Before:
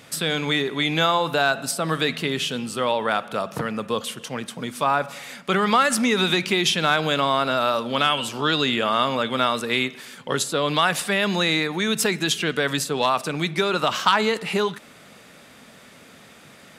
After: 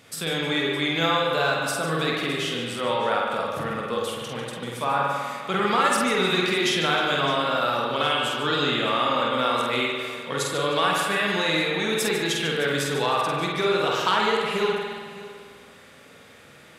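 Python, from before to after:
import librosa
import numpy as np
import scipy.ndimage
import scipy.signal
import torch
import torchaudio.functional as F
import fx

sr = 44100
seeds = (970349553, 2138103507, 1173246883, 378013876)

y = fx.echo_multitap(x, sr, ms=(48, 147, 187, 309, 613), db=(-4.0, -10.5, -18.0, -20.0, -17.0))
y = fx.rev_spring(y, sr, rt60_s=1.7, pass_ms=(50,), chirp_ms=20, drr_db=-0.5)
y = y * librosa.db_to_amplitude(-6.0)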